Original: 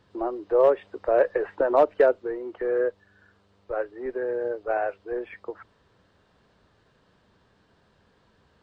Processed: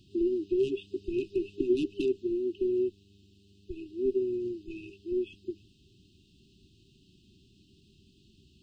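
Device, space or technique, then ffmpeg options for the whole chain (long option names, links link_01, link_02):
exciter from parts: -filter_complex "[0:a]asplit=2[link_01][link_02];[link_02]highpass=2000,asoftclip=type=tanh:threshold=-39dB,volume=-11.5dB[link_03];[link_01][link_03]amix=inputs=2:normalize=0,afftfilt=real='re*(1-between(b*sr/4096,400,2500))':imag='im*(1-between(b*sr/4096,400,2500))':win_size=4096:overlap=0.75,volume=4.5dB"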